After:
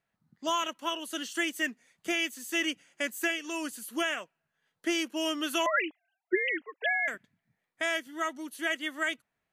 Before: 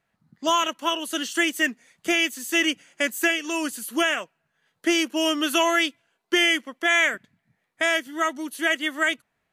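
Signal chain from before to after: 5.66–7.08 s: formants replaced by sine waves; trim -8 dB

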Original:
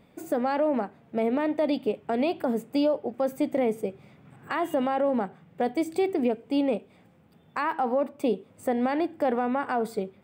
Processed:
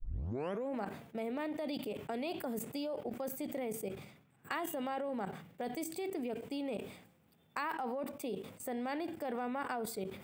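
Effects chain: tape start-up on the opening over 0.75 s; treble shelf 11 kHz +7.5 dB; level held to a coarse grid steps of 16 dB; treble shelf 2.5 kHz +9 dB; decay stretcher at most 81 dB/s; trim -6 dB

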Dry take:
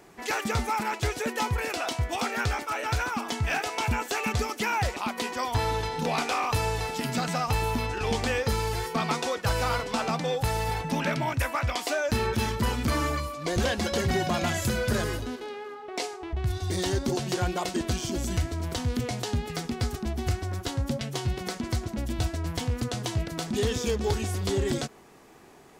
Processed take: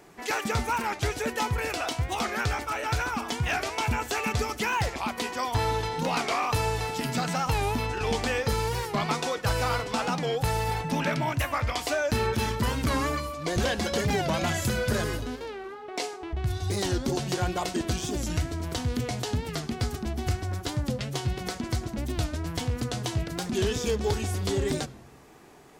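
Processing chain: simulated room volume 2600 m³, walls furnished, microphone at 0.41 m; warped record 45 rpm, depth 160 cents

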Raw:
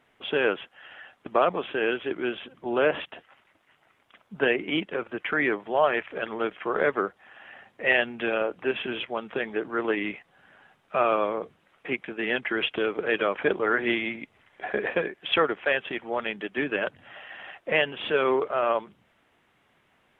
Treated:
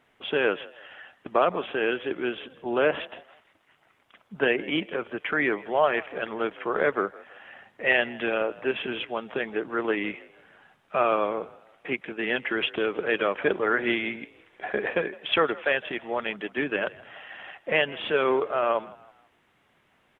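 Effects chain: frequency-shifting echo 161 ms, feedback 39%, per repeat +49 Hz, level -21 dB

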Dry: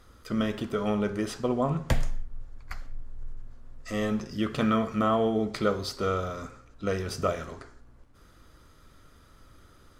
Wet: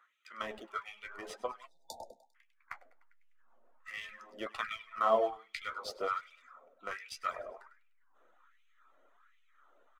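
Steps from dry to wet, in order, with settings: local Wiener filter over 9 samples; dynamic bell 2.1 kHz, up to +5 dB, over -54 dBFS, Q 5.1; on a send: feedback delay 100 ms, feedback 53%, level -10 dB; on the sum: LFO high-pass sine 1.3 Hz 590–2500 Hz; resonant low shelf 150 Hz -8 dB, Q 1.5; in parallel at -10 dB: hysteresis with a dead band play -22.5 dBFS; on the sum: spectral selection erased 1.67–2.35 s, 940–3500 Hz; flange 0.65 Hz, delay 9.4 ms, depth 6.4 ms, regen +47%; reverb removal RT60 0.77 s; trim -4 dB

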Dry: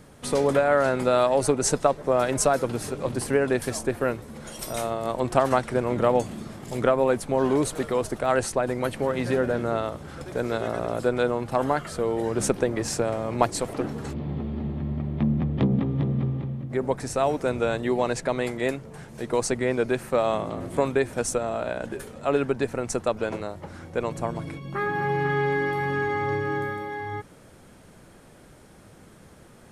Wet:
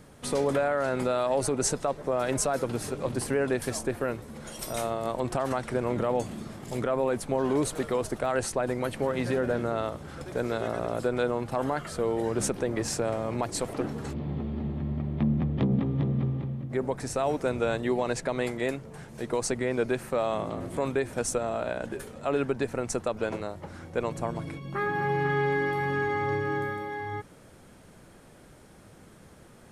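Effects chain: peak limiter -14.5 dBFS, peak gain reduction 9.5 dB; trim -2 dB

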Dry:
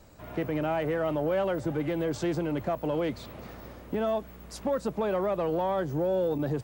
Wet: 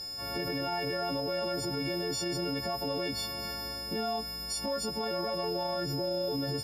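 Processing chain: partials quantised in pitch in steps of 4 st; peak limiter -27.5 dBFS, peak gain reduction 11 dB; whistle 5.1 kHz -39 dBFS; trim +1.5 dB

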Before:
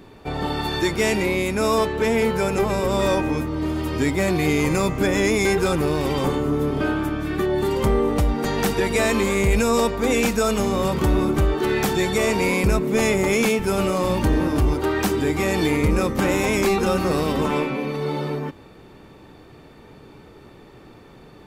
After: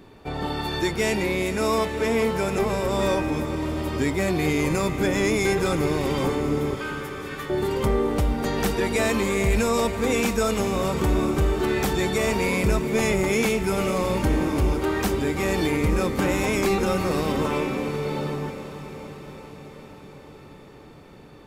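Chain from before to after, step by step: 6.75–7.50 s: steep high-pass 990 Hz; on a send: echo that smears into a reverb 463 ms, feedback 69%, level -12 dB; on the sum: trim -3 dB

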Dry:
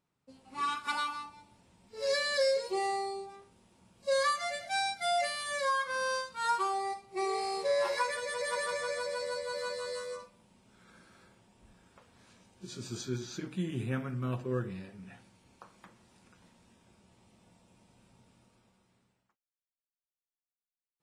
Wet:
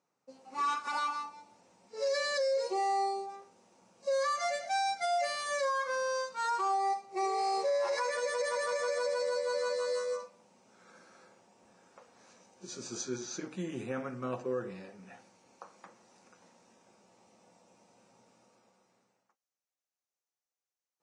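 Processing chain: cabinet simulation 230–8600 Hz, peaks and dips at 520 Hz +7 dB, 780 Hz +6 dB, 1.2 kHz +3 dB, 3.3 kHz -6 dB, 6.1 kHz +8 dB; peak limiter -24.5 dBFS, peak gain reduction 11 dB

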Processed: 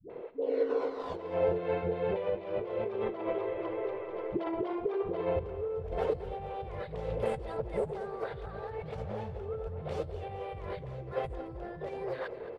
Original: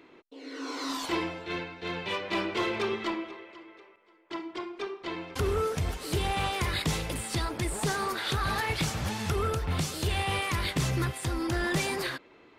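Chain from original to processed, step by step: treble shelf 10 kHz -11 dB; phase dispersion highs, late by 101 ms, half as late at 360 Hz; compressor with a negative ratio -40 dBFS, ratio -1; FFT filter 150 Hz 0 dB, 300 Hz -11 dB, 470 Hz +11 dB, 1.1 kHz -8 dB, 3.2 kHz -16 dB, 6.4 kHz -27 dB; feedback delay 219 ms, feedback 52%, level -14 dB; 2.12–4.73 s: three bands compressed up and down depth 100%; trim +3.5 dB

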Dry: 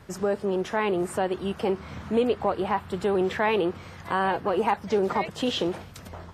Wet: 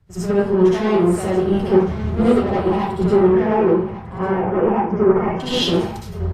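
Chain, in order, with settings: bass shelf 360 Hz +9.5 dB; saturation -21 dBFS, distortion -10 dB; 3.20–5.40 s: boxcar filter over 11 samples; delay 1148 ms -11.5 dB; reverberation RT60 0.60 s, pre-delay 58 ms, DRR -7.5 dB; three bands expanded up and down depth 70%; trim -1 dB

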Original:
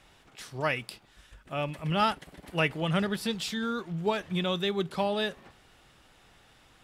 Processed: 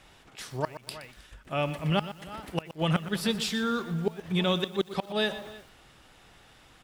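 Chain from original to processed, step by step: echo from a far wall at 54 m, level -19 dB; inverted gate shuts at -18 dBFS, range -26 dB; bit-crushed delay 121 ms, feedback 35%, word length 8-bit, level -13 dB; trim +3 dB

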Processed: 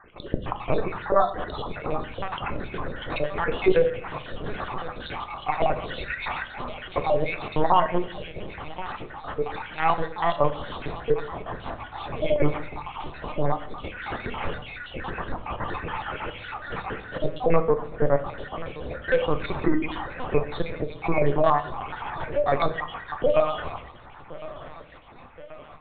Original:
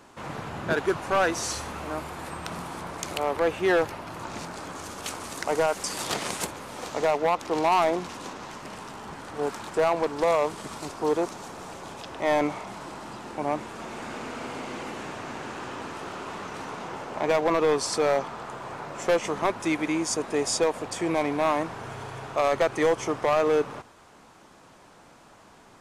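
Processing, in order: random holes in the spectrogram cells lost 64%; de-hum 158.7 Hz, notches 3; in parallel at -2.5 dB: compression 12:1, threshold -35 dBFS, peak gain reduction 16.5 dB; 17.61–18.25 s: on the sum: low-pass 1.1 kHz -> 1.9 kHz 24 dB/octave; thinning echo 1070 ms, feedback 64%, high-pass 250 Hz, level -17.5 dB; LPC vocoder at 8 kHz pitch kept; level rider gain up to 5 dB; on a send at -8.5 dB: reverberation RT60 0.60 s, pre-delay 3 ms; on the sum: trim -1.5 dB

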